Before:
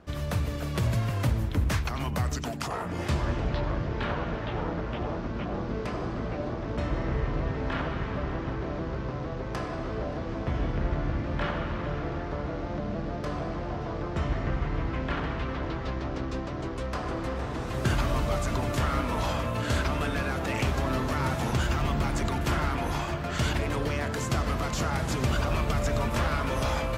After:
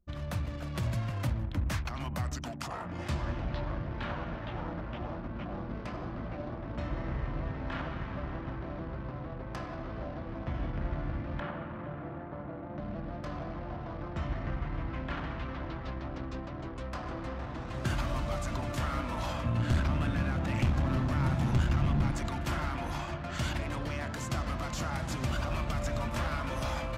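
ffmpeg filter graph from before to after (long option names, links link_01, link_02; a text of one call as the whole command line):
ffmpeg -i in.wav -filter_complex "[0:a]asettb=1/sr,asplit=3[link_01][link_02][link_03];[link_01]atrim=end=11.404[link_04];[link_02]atrim=start=11.4:end=12.78,asetpts=PTS-STARTPTS,afade=type=in:duration=0.004:curve=qsin,afade=type=out:start_time=1.376:duration=0.004:curve=qsin,highpass=110,lowpass=4500,highshelf=frequency=2500:gain=-10.5[link_05];[link_03]atrim=start=12.776[link_06];[link_04][link_05]acrossfade=duration=0.004:curve1=hsin:curve2=qsin[link_07];[link_07][link_06]acrossfade=duration=0.004:curve1=qsin:curve2=hsin,asettb=1/sr,asplit=3[link_08][link_09][link_10];[link_08]atrim=end=19.444[link_11];[link_09]atrim=start=19.44:end=22.12,asetpts=PTS-STARTPTS,afade=type=in:duration=0.004:curve=qsin,afade=type=out:start_time=2.676:duration=0.004:curve=qsin,highpass=frequency=110:poles=1,bass=frequency=250:gain=13,treble=frequency=4000:gain=-3,aeval=exprs='clip(val(0),-1,0.0891)':channel_layout=same[link_12];[link_10]atrim=start=22.116[link_13];[link_11][link_12]acrossfade=duration=0.004:curve1=hsin:curve2=qsin[link_14];[link_14][link_13]acrossfade=duration=0.004:curve1=qsin:curve2=hsin,anlmdn=0.398,equalizer=frequency=430:width_type=o:width=0.22:gain=-12,volume=-5.5dB" out.wav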